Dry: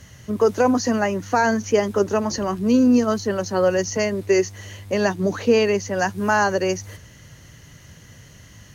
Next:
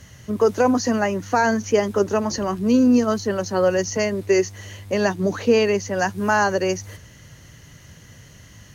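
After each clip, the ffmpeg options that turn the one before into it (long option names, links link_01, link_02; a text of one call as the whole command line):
ffmpeg -i in.wav -af anull out.wav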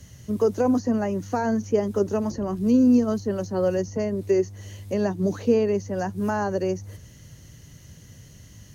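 ffmpeg -i in.wav -filter_complex "[0:a]equalizer=frequency=1400:width=0.46:gain=-9.5,acrossover=split=600|1600[link_01][link_02][link_03];[link_03]acompressor=threshold=-45dB:ratio=6[link_04];[link_01][link_02][link_04]amix=inputs=3:normalize=0" out.wav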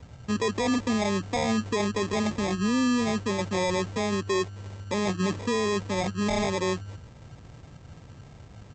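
ffmpeg -i in.wav -af "alimiter=limit=-19dB:level=0:latency=1:release=11,aresample=16000,acrusher=samples=11:mix=1:aa=0.000001,aresample=44100" out.wav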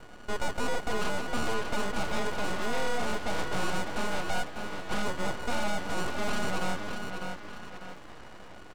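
ffmpeg -i in.wav -filter_complex "[0:a]asplit=2[link_01][link_02];[link_02]adelay=598,lowpass=frequency=4700:poles=1,volume=-11dB,asplit=2[link_03][link_04];[link_04]adelay=598,lowpass=frequency=4700:poles=1,volume=0.36,asplit=2[link_05][link_06];[link_06]adelay=598,lowpass=frequency=4700:poles=1,volume=0.36,asplit=2[link_07][link_08];[link_08]adelay=598,lowpass=frequency=4700:poles=1,volume=0.36[link_09];[link_01][link_03][link_05][link_07][link_09]amix=inputs=5:normalize=0,asplit=2[link_10][link_11];[link_11]highpass=frequency=720:poles=1,volume=18dB,asoftclip=type=tanh:threshold=-16dB[link_12];[link_10][link_12]amix=inputs=2:normalize=0,lowpass=frequency=1800:poles=1,volume=-6dB,aeval=exprs='abs(val(0))':channel_layout=same,volume=-2dB" out.wav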